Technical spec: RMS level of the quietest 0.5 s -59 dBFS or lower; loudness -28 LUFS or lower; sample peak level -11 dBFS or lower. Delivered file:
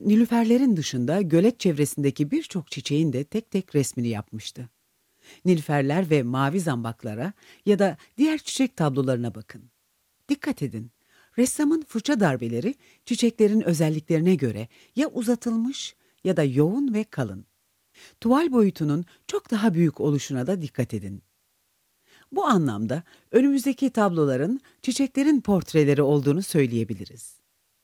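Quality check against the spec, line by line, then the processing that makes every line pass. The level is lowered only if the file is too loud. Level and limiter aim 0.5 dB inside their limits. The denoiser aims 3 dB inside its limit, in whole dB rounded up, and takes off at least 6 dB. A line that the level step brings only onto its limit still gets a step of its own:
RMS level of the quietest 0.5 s -70 dBFS: pass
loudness -24.0 LUFS: fail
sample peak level -6.5 dBFS: fail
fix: trim -4.5 dB; peak limiter -11.5 dBFS

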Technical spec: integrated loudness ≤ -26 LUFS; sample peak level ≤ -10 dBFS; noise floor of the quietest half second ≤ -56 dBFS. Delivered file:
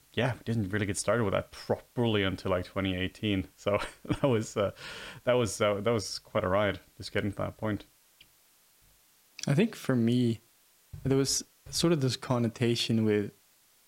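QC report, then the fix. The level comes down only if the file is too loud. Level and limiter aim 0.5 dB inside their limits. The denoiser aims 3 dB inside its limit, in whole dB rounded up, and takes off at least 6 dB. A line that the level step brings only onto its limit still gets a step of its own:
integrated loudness -30.0 LUFS: pass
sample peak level -12.5 dBFS: pass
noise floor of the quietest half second -64 dBFS: pass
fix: none needed

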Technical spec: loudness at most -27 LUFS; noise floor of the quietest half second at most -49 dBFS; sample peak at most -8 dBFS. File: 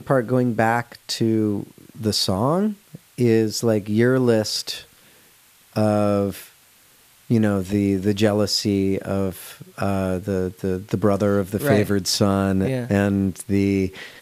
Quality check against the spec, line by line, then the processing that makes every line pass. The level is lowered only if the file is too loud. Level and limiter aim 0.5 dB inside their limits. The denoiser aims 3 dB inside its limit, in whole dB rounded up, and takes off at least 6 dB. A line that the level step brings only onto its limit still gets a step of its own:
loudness -21.0 LUFS: fail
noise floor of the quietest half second -54 dBFS: pass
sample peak -3.5 dBFS: fail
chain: trim -6.5 dB

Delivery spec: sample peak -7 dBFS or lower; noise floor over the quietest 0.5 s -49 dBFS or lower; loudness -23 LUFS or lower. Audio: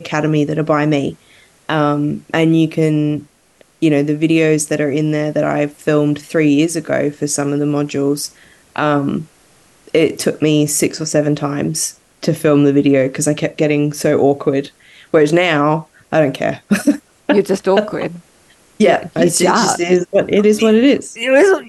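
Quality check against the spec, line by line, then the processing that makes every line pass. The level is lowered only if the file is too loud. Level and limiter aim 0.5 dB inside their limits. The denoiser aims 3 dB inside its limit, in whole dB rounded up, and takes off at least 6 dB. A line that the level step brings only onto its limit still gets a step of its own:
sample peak -2.0 dBFS: fail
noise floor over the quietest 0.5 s -52 dBFS: pass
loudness -15.0 LUFS: fail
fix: trim -8.5 dB

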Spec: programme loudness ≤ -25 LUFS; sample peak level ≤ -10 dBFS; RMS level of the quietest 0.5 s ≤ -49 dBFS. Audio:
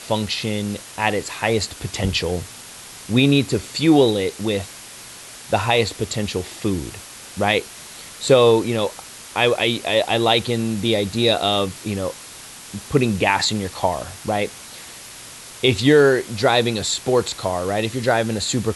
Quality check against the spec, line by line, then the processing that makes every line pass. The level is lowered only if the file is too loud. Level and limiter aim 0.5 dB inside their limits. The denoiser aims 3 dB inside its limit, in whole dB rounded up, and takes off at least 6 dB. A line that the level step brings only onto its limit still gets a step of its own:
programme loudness -20.0 LUFS: fail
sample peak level -3.5 dBFS: fail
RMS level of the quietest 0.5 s -39 dBFS: fail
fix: noise reduction 8 dB, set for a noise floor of -39 dBFS; trim -5.5 dB; peak limiter -10.5 dBFS

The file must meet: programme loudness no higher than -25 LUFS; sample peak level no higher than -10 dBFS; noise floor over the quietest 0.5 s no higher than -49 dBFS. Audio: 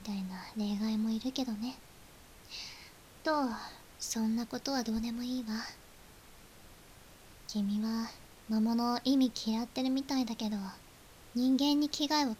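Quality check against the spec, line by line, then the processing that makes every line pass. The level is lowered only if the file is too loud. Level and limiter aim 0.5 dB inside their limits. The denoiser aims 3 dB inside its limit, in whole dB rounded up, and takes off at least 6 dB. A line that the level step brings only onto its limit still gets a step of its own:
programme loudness -34.0 LUFS: pass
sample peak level -16.5 dBFS: pass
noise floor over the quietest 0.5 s -56 dBFS: pass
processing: none needed

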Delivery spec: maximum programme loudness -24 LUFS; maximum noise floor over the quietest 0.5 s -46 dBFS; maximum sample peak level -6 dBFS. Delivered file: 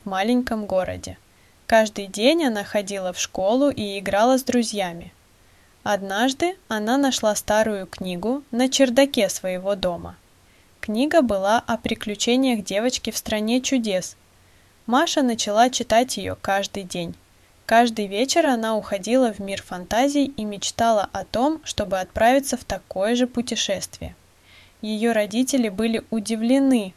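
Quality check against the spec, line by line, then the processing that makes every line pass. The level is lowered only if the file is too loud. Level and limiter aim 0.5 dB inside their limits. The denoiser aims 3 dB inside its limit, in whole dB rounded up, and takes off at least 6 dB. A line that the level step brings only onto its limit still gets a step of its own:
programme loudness -21.5 LUFS: fail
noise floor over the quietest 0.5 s -55 dBFS: pass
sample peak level -3.5 dBFS: fail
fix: trim -3 dB

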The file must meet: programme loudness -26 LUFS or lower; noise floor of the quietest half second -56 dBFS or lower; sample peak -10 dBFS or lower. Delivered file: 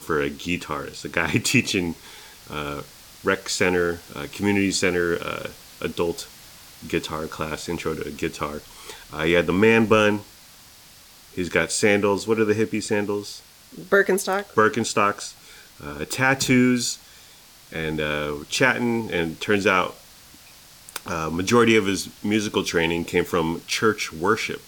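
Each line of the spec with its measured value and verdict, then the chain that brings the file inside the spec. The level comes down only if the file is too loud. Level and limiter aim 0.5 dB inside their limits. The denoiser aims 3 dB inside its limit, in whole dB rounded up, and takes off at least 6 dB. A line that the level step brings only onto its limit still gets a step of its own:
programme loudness -22.5 LUFS: fail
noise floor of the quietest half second -49 dBFS: fail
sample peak -5.5 dBFS: fail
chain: noise reduction 6 dB, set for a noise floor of -49 dBFS; trim -4 dB; peak limiter -10.5 dBFS

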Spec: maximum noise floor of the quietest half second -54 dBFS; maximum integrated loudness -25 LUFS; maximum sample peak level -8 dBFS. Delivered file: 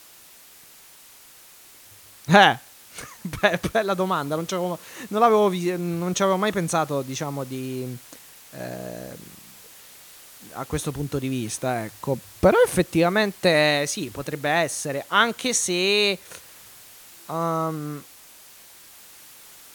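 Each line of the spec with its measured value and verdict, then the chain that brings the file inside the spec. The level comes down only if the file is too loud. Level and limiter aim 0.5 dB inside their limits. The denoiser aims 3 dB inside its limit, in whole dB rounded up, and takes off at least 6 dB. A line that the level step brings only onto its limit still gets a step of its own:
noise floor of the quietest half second -49 dBFS: fail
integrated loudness -22.5 LUFS: fail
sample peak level -2.0 dBFS: fail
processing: noise reduction 6 dB, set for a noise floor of -49 dBFS; trim -3 dB; peak limiter -8.5 dBFS

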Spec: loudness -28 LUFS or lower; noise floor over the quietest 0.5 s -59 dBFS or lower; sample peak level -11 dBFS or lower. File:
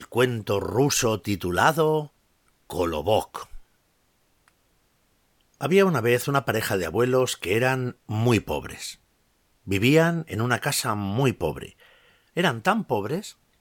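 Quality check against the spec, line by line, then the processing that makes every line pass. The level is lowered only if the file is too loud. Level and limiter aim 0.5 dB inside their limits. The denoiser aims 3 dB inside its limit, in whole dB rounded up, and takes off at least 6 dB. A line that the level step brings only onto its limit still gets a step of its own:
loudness -24.0 LUFS: fail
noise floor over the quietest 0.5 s -67 dBFS: pass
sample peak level -5.5 dBFS: fail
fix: trim -4.5 dB; peak limiter -11.5 dBFS

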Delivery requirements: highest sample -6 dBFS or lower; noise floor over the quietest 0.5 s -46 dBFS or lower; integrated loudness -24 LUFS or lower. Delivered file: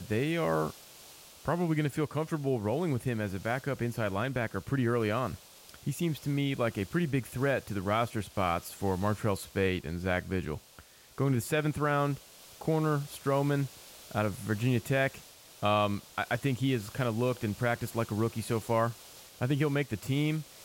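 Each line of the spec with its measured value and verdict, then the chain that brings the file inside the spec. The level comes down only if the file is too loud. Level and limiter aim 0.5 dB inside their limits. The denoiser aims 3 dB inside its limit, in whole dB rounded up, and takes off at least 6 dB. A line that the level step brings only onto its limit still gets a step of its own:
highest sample -16.5 dBFS: pass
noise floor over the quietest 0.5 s -56 dBFS: pass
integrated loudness -31.5 LUFS: pass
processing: none needed

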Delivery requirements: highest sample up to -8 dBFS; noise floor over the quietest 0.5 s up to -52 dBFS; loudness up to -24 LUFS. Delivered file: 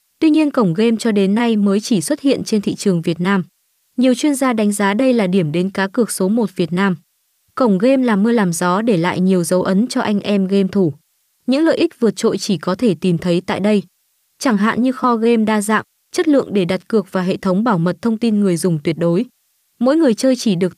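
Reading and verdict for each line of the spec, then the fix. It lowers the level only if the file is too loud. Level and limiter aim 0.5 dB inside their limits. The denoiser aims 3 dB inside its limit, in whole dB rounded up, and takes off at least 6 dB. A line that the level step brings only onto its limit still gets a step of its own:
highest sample -4.5 dBFS: fail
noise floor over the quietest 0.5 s -63 dBFS: pass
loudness -16.0 LUFS: fail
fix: trim -8.5 dB

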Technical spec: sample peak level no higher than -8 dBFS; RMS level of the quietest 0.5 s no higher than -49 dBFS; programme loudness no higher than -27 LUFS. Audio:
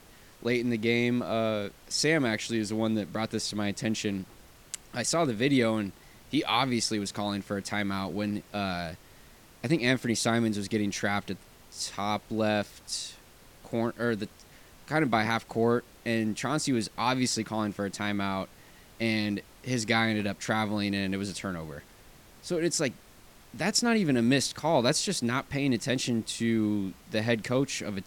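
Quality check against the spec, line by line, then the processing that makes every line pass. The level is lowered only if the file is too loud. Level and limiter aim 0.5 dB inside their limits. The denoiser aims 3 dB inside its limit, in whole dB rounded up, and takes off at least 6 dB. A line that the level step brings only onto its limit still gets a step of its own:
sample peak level -10.0 dBFS: pass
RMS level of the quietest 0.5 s -54 dBFS: pass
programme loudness -29.0 LUFS: pass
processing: none needed

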